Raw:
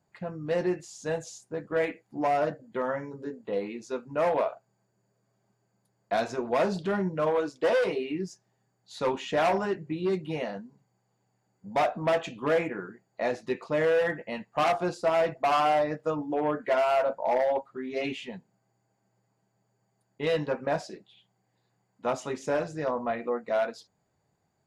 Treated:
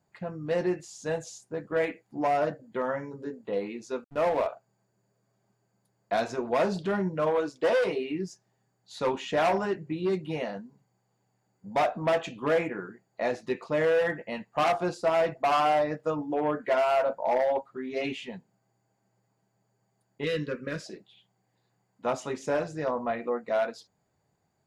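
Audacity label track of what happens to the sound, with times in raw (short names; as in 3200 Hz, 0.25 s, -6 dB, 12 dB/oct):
4.040000	4.470000	backlash play -31 dBFS
20.240000	20.860000	Butterworth band-stop 790 Hz, Q 0.97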